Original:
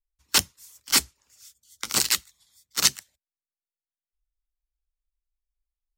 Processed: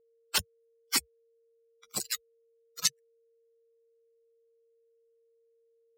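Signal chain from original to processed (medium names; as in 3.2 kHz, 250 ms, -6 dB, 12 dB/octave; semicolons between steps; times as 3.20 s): expander on every frequency bin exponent 3; whistle 460 Hz -63 dBFS; trim -3.5 dB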